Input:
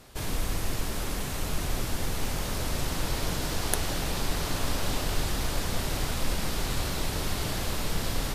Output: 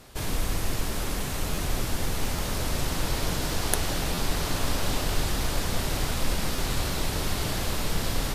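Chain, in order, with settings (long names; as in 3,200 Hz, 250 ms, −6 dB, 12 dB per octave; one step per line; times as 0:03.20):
buffer that repeats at 0:01.54/0:02.35/0:04.14/0:06.55, samples 512, times 2
level +2 dB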